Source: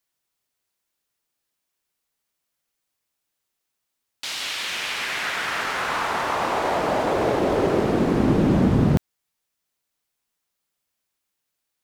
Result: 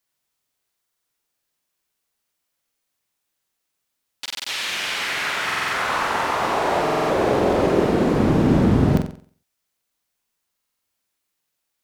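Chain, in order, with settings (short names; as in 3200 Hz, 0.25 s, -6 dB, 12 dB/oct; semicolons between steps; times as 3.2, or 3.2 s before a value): flutter echo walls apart 7.8 m, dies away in 0.46 s; stuck buffer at 0.79/4.21/5.45/6.82/10.56, samples 2048, times 5; gain +1 dB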